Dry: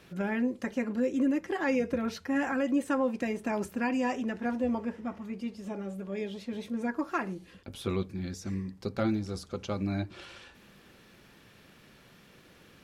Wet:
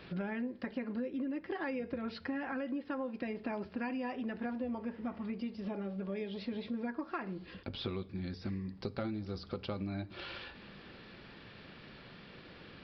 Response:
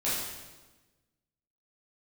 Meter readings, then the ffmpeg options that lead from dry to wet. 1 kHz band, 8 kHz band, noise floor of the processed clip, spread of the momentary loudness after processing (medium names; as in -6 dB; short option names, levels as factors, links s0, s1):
-7.5 dB, under -25 dB, -54 dBFS, 14 LU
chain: -filter_complex "[0:a]acompressor=threshold=0.01:ratio=6,asplit=2[s0][s1];[1:a]atrim=start_sample=2205[s2];[s1][s2]afir=irnorm=-1:irlink=0,volume=0.0299[s3];[s0][s3]amix=inputs=2:normalize=0,aresample=11025,aresample=44100,volume=1.58"